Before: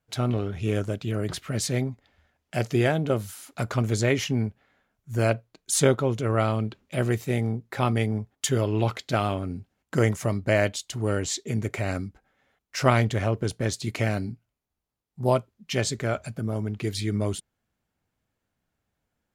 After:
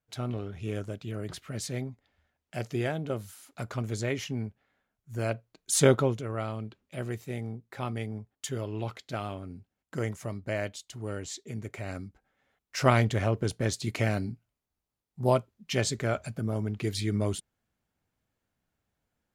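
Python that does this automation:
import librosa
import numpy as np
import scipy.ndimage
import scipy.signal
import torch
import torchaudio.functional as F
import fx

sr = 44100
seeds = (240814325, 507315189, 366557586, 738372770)

y = fx.gain(x, sr, db=fx.line((5.25, -8.0), (6.0, 1.0), (6.27, -10.0), (11.72, -10.0), (12.88, -2.0)))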